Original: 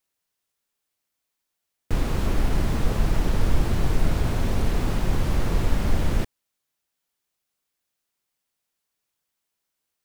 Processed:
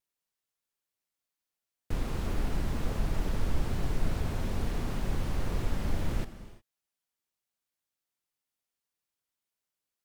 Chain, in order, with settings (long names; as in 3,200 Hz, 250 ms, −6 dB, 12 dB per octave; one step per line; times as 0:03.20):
reverb whose tail is shaped and stops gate 380 ms flat, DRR 11.5 dB
tape wow and flutter 53 cents
level −8.5 dB